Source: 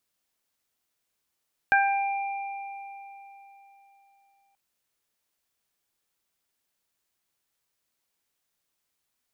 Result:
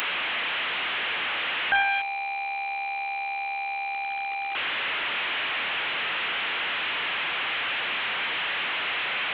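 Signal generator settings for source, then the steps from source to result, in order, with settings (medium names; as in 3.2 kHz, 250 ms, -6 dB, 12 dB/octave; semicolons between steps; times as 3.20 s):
additive tone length 2.83 s, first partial 793 Hz, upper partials 4/-7.5 dB, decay 3.65 s, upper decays 0.51/3.32 s, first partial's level -20 dB
one-bit delta coder 16 kbps, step -24.5 dBFS; tilt EQ +4.5 dB/octave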